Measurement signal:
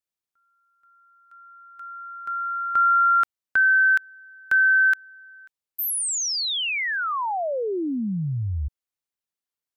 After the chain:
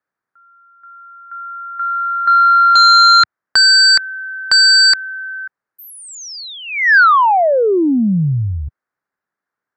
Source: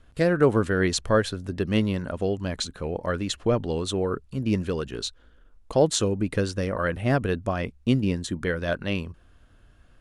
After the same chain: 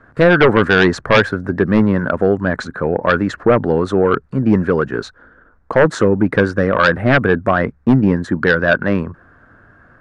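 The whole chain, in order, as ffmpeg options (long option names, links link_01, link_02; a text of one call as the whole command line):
ffmpeg -i in.wav -filter_complex "[0:a]highshelf=frequency=2200:width_type=q:width=3:gain=-11,acrossover=split=100|5500[link_01][link_02][link_03];[link_01]tremolo=f=69:d=0.857[link_04];[link_02]aeval=exprs='0.596*sin(PI/2*2.82*val(0)/0.596)':channel_layout=same[link_05];[link_04][link_05][link_03]amix=inputs=3:normalize=0" out.wav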